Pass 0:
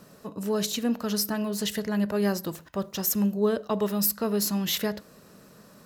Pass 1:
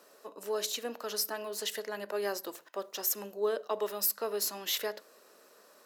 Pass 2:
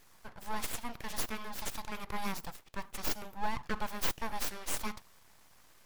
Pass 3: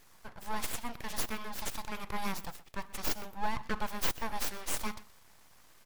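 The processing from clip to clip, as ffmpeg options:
-af "highpass=f=370:w=0.5412,highpass=f=370:w=1.3066,volume=-4dB"
-af "aeval=exprs='abs(val(0))':c=same"
-af "aecho=1:1:124:0.106,volume=1dB"

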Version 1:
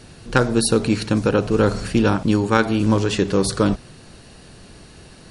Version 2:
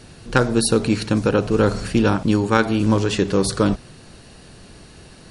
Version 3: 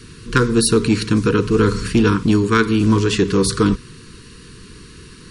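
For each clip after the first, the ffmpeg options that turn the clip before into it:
-af anull
-af "asuperstop=centerf=680:order=20:qfactor=1.5,aeval=exprs='0.75*(cos(1*acos(clip(val(0)/0.75,-1,1)))-cos(1*PI/2))+0.0473*(cos(5*acos(clip(val(0)/0.75,-1,1)))-cos(5*PI/2))':c=same,volume=1.5dB"

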